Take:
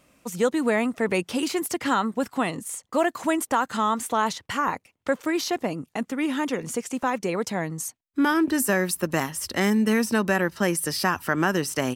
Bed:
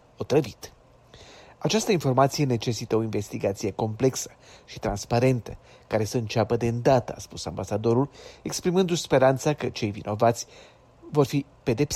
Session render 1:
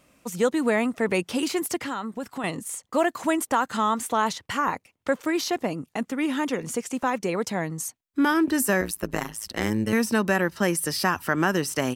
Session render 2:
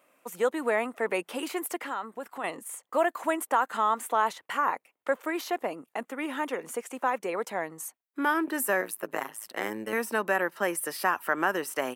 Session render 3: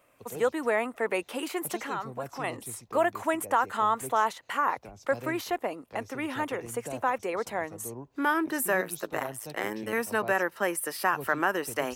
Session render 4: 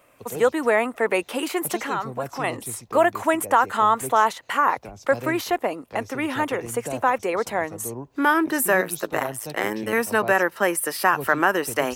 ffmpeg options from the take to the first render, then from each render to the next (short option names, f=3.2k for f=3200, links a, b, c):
-filter_complex "[0:a]asettb=1/sr,asplit=3[a][b][c];[a]atrim=end=1.844[d];[b]atrim=start=1.84:end=2.44,asetpts=PTS-STARTPTS,afade=t=in:d=0.004:c=qsin,afade=t=out:st=0.596:d=0.004:c=qsin,acompressor=threshold=-33dB:ratio=2:attack=3.2:release=140:knee=1:detection=peak[e];[c]atrim=start=2.436[f];[d][e]acrossfade=d=0.004:c1=hsin:c2=qsin[g];[g][f]acrossfade=d=0.004:c1=qsin:c2=hsin,asettb=1/sr,asplit=3[h][i][j];[h]atrim=end=8.814[k];[i]atrim=start=8.81:end=9.93,asetpts=PTS-STARTPTS,afade=t=in:d=0.004:c=qsin,afade=t=out:st=1.116:d=0.004:c=qsin,tremolo=f=110:d=0.974[l];[j]atrim=start=9.926[m];[k][l]acrossfade=d=0.004:c1=hsin:c2=qsin[n];[n][m]acrossfade=d=0.004:c1=qsin:c2=hsin"
-af "highpass=490,equalizer=f=5.3k:t=o:w=1.5:g=-13"
-filter_complex "[1:a]volume=-19.5dB[a];[0:a][a]amix=inputs=2:normalize=0"
-af "volume=7dB"